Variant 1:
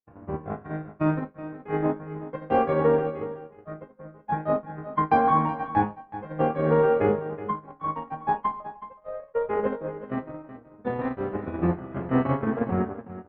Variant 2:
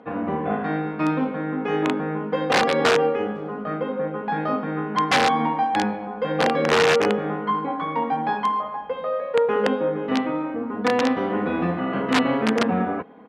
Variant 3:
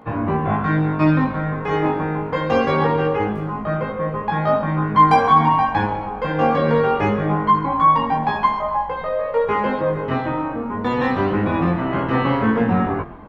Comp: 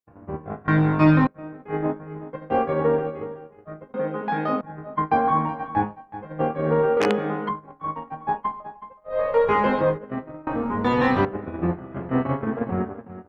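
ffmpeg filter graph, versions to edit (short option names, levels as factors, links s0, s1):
-filter_complex "[2:a]asplit=3[s0][s1][s2];[1:a]asplit=2[s3][s4];[0:a]asplit=6[s5][s6][s7][s8][s9][s10];[s5]atrim=end=0.682[s11];[s0]atrim=start=0.678:end=1.272[s12];[s6]atrim=start=1.268:end=3.942[s13];[s3]atrim=start=3.938:end=4.612[s14];[s7]atrim=start=4.608:end=6.972[s15];[s4]atrim=start=6.968:end=7.492[s16];[s8]atrim=start=7.488:end=9.19[s17];[s1]atrim=start=9.09:end=9.99[s18];[s9]atrim=start=9.89:end=10.472[s19];[s2]atrim=start=10.468:end=11.252[s20];[s10]atrim=start=11.248[s21];[s11][s12]acrossfade=d=0.004:c1=hsin:c2=hsin[s22];[s22][s13]acrossfade=d=0.004:c1=hsin:c2=hsin[s23];[s23][s14]acrossfade=d=0.004:c1=hsin:c2=hsin[s24];[s24][s15]acrossfade=d=0.004:c1=hsin:c2=hsin[s25];[s25][s16]acrossfade=d=0.004:c1=hsin:c2=hsin[s26];[s26][s17]acrossfade=d=0.004:c1=hsin:c2=hsin[s27];[s27][s18]acrossfade=d=0.1:c1=tri:c2=tri[s28];[s28][s19]acrossfade=d=0.1:c1=tri:c2=tri[s29];[s29][s20]acrossfade=d=0.004:c1=hsin:c2=hsin[s30];[s30][s21]acrossfade=d=0.004:c1=hsin:c2=hsin"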